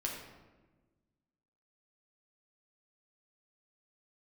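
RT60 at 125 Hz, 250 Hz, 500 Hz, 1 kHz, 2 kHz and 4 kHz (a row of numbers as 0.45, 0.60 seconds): 1.9, 1.8, 1.4, 1.1, 1.0, 0.75 seconds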